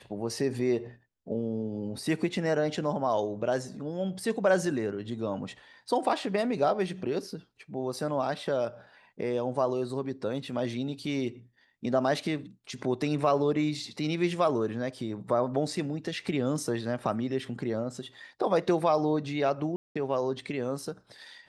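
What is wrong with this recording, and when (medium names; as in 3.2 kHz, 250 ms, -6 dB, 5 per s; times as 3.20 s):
19.76–19.95 s: dropout 195 ms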